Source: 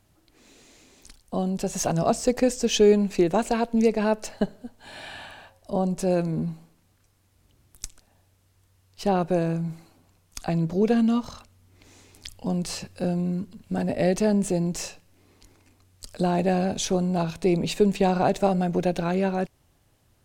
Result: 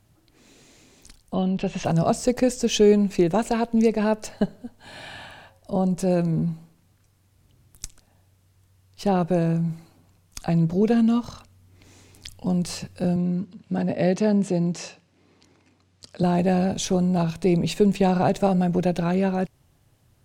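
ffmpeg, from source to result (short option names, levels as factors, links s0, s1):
-filter_complex "[0:a]asettb=1/sr,asplit=3[s0][s1][s2];[s0]atrim=end=1.344[s3];[s1]atrim=start=1.34:end=1.85,asetpts=PTS-STARTPTS,afade=t=in:d=0.004:c=qsin,afade=t=out:st=0.506:d=0.004:c=qsin,lowpass=f=3000:t=q:w=2.7[s4];[s2]atrim=start=1.846[s5];[s3][s4]acrossfade=d=0.004:c1=hsin:c2=qsin[s6];[s6][s5]acrossfade=d=0.004:c1=qsin:c2=hsin,asettb=1/sr,asplit=3[s7][s8][s9];[s7]atrim=end=13.164[s10];[s8]atrim=start=13.16:end=16.23,asetpts=PTS-STARTPTS,afade=t=in:d=0.004:c=qsin,afade=t=out:st=3.066:d=0.004:c=qsin,highpass=140,lowpass=5800[s11];[s9]atrim=start=16.226[s12];[s10][s11]acrossfade=d=0.004:c1=hsin:c2=qsin[s13];[s13][s12]acrossfade=d=0.004:c1=qsin:c2=hsin,equalizer=f=130:t=o:w=1.1:g=6.5"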